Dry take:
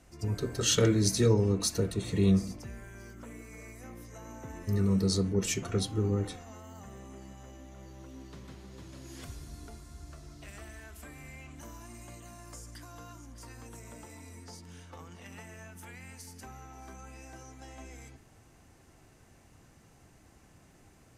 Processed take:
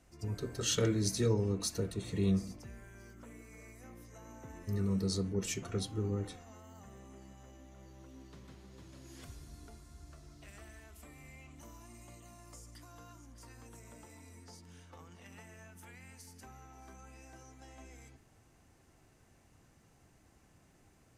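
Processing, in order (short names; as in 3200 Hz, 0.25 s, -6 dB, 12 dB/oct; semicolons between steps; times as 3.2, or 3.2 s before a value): 10.79–12.87 notch 1600 Hz, Q 6.9; gain -6 dB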